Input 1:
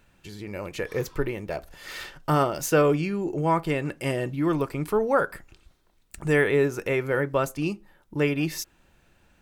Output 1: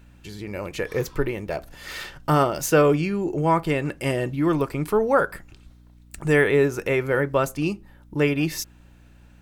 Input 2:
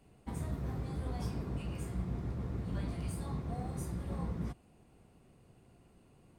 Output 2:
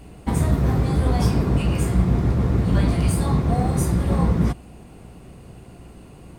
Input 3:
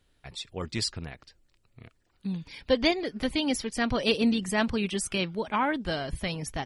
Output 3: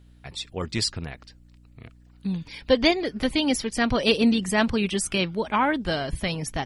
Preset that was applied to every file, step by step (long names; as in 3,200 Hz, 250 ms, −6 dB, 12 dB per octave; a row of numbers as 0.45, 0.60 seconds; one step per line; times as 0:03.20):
mains hum 60 Hz, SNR 27 dB
normalise the peak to −6 dBFS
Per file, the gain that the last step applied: +3.0, +18.5, +4.5 decibels